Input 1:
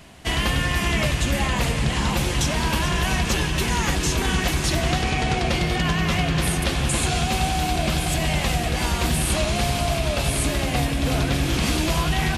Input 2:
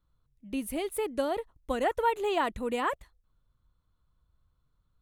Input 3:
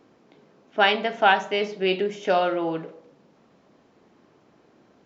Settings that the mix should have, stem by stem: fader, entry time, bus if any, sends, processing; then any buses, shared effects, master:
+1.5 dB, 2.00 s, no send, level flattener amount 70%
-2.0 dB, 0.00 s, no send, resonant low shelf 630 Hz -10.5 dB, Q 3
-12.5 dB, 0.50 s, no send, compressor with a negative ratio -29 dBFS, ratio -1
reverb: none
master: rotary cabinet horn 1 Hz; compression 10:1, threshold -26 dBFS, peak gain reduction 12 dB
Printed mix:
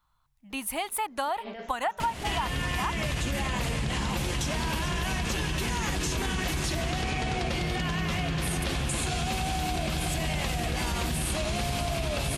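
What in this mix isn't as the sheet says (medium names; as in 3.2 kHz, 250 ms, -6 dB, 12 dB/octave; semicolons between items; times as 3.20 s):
stem 2 -2.0 dB -> +8.0 dB; master: missing rotary cabinet horn 1 Hz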